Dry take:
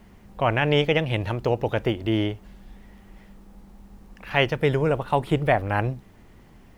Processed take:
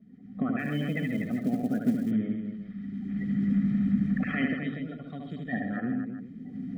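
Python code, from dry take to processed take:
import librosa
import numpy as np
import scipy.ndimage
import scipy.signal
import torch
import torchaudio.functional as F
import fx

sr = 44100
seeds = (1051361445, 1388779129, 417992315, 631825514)

p1 = fx.spec_quant(x, sr, step_db=30)
p2 = fx.recorder_agc(p1, sr, target_db=-13.5, rise_db_per_s=19.0, max_gain_db=30)
p3 = fx.graphic_eq(p2, sr, hz=(125, 250, 500, 1000, 2000, 4000), db=(-3, -10, -7, -5, -7, 9), at=(4.55, 5.53))
p4 = fx.hpss(p3, sr, part='percussive', gain_db=5)
p5 = fx.vowel_filter(p4, sr, vowel='i')
p6 = fx.high_shelf_res(p5, sr, hz=2100.0, db=-8.5, q=3.0)
p7 = p6 + 0.77 * np.pad(p6, (int(1.6 * sr / 1000.0), 0))[:len(p6)]
p8 = fx.small_body(p7, sr, hz=(200.0, 740.0), ring_ms=30, db=15)
p9 = p8 + fx.echo_multitap(p8, sr, ms=(74, 81, 135, 243, 392), db=(-5.0, -10.5, -9.0, -7.5, -14.0), dry=0)
p10 = fx.quant_float(p9, sr, bits=4, at=(0.59, 2.11))
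y = p10 * 10.0 ** (-3.0 / 20.0)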